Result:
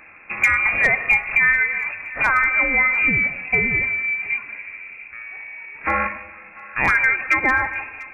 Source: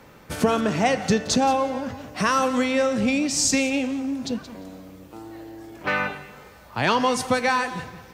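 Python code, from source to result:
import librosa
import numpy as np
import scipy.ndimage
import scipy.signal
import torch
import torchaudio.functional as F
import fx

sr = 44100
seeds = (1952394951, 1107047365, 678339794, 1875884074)

p1 = fx.freq_invert(x, sr, carrier_hz=2600)
p2 = np.clip(p1, -10.0 ** (-11.5 / 20.0), 10.0 ** (-11.5 / 20.0))
p3 = p2 + fx.echo_thinned(p2, sr, ms=693, feedback_pct=30, hz=990.0, wet_db=-18.0, dry=0)
y = F.gain(torch.from_numpy(p3), 3.5).numpy()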